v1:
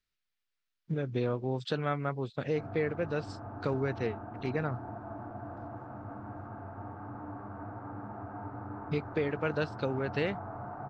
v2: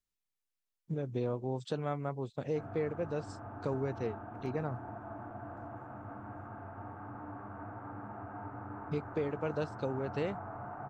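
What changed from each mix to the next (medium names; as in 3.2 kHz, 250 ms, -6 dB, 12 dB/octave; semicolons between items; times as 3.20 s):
speech: add high-order bell 2.6 kHz -11 dB 2.3 oct; master: add tilt shelf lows -3.5 dB, about 1.4 kHz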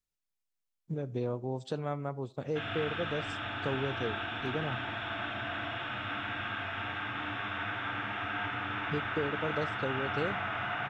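background: remove low-pass 1 kHz 24 dB/octave; reverb: on, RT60 0.45 s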